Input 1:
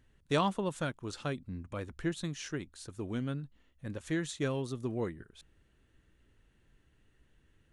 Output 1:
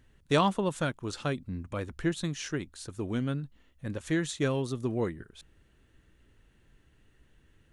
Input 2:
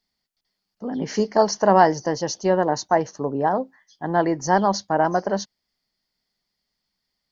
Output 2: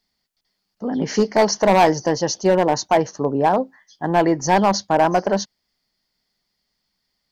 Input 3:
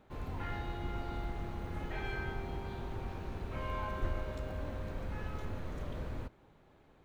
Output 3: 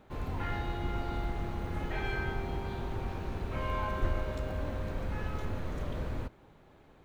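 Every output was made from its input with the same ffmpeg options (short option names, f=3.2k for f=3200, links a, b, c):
-af "asoftclip=type=hard:threshold=-13.5dB,volume=4.5dB"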